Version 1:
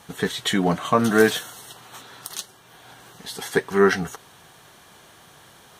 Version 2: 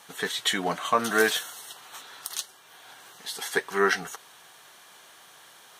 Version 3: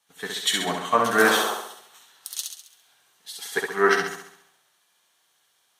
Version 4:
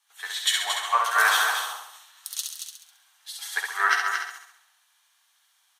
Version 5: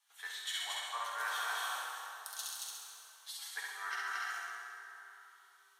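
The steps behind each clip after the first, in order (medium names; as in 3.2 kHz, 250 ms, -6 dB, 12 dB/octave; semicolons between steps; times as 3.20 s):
high-pass 900 Hz 6 dB/octave
painted sound noise, 1.23–1.54 s, 330–1400 Hz -29 dBFS; on a send: flutter echo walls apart 11.6 m, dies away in 0.97 s; on the sum: three bands expanded up and down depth 70%; trim -1.5 dB
high-pass 830 Hz 24 dB/octave; delay 227 ms -6.5 dB
reverse; compression 4:1, threshold -34 dBFS, peak gain reduction 15 dB; reverse; plate-style reverb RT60 3.5 s, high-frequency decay 0.55×, DRR -0.5 dB; trim -6.5 dB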